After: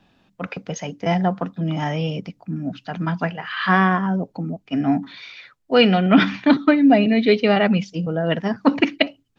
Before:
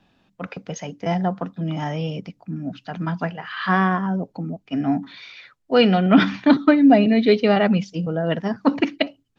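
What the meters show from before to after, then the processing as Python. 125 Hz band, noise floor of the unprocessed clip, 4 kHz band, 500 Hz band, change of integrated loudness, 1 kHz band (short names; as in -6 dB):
+1.5 dB, -66 dBFS, +3.0 dB, +0.5 dB, +0.5 dB, +1.0 dB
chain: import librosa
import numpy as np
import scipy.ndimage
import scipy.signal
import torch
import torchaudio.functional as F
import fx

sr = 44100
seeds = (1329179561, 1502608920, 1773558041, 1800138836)

p1 = fx.dynamic_eq(x, sr, hz=2400.0, q=1.5, threshold_db=-40.0, ratio=4.0, max_db=4)
p2 = fx.rider(p1, sr, range_db=4, speed_s=2.0)
p3 = p1 + (p2 * librosa.db_to_amplitude(-2.5))
y = p3 * librosa.db_to_amplitude(-4.5)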